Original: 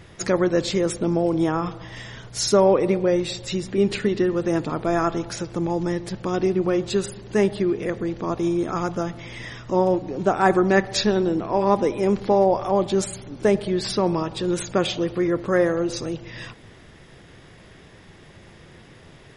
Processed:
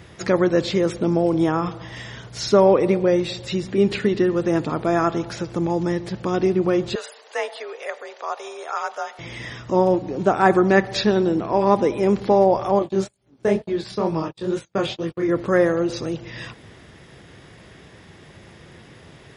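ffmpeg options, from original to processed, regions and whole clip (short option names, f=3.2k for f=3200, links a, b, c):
-filter_complex "[0:a]asettb=1/sr,asplit=3[a][b][c];[a]atrim=end=6.954[d];[b]atrim=start=6.95:end=9.19,asetpts=PTS-STARTPTS,afade=t=in:d=0.004:c=qsin,afade=t=out:st=2.236:d=0.004:c=qsin,highpass=f=550:w=0.5412,highpass=f=550:w=1.3066,afreqshift=50[e];[c]atrim=start=9.186[f];[d][e]acrossfade=d=0.004:c1=hsin:c2=qsin[g];[g][f]acrossfade=d=0.004:c1=qsin:c2=hsin,asettb=1/sr,asplit=3[h][i][j];[h]atrim=end=12.794[k];[i]atrim=start=12.79:end=15.29,asetpts=PTS-STARTPTS,afade=t=in:d=0.004:c=qsin,afade=t=out:st=2.496:d=0.004:c=qsin,agate=range=-50dB:threshold=-28dB:ratio=16:release=100:detection=peak,acompressor=mode=upward:threshold=-27dB:ratio=2.5:attack=3.2:release=140:knee=2.83:detection=peak,flanger=delay=18.5:depth=7.3:speed=2.2[l];[j]atrim=start=15.286[m];[k][l]acrossfade=d=0.004:c1=hsin:c2=qsin[n];[n][m]acrossfade=d=0.004:c1=qsin:c2=hsin,acrossover=split=5200[o][p];[p]acompressor=threshold=-49dB:ratio=4:attack=1:release=60[q];[o][q]amix=inputs=2:normalize=0,highpass=50,volume=2dB"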